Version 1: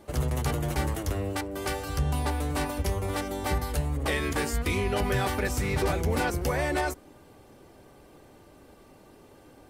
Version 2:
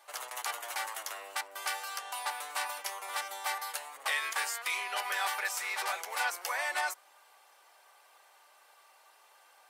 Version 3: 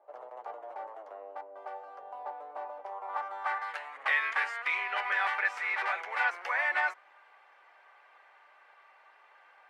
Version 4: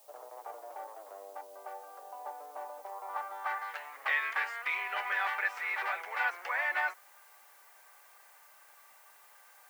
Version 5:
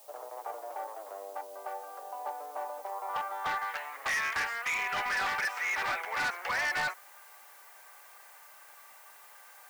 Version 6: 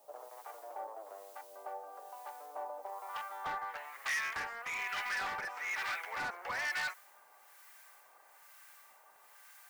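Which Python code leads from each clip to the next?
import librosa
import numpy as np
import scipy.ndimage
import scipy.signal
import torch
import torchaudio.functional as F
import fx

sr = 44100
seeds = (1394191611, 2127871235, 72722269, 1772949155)

y1 = scipy.signal.sosfilt(scipy.signal.butter(4, 830.0, 'highpass', fs=sr, output='sos'), x)
y2 = fx.high_shelf(y1, sr, hz=8000.0, db=5.0)
y2 = fx.filter_sweep_lowpass(y2, sr, from_hz=600.0, to_hz=2000.0, start_s=2.72, end_s=3.78, q=1.9)
y3 = fx.dmg_noise_colour(y2, sr, seeds[0], colour='blue', level_db=-59.0)
y3 = fx.dmg_crackle(y3, sr, seeds[1], per_s=10.0, level_db=-51.0)
y3 = y3 * 10.0 ** (-2.5 / 20.0)
y4 = np.clip(10.0 ** (33.0 / 20.0) * y3, -1.0, 1.0) / 10.0 ** (33.0 / 20.0)
y4 = y4 * 10.0 ** (5.0 / 20.0)
y5 = fx.harmonic_tremolo(y4, sr, hz=1.1, depth_pct=70, crossover_hz=1200.0)
y5 = y5 * 10.0 ** (-2.5 / 20.0)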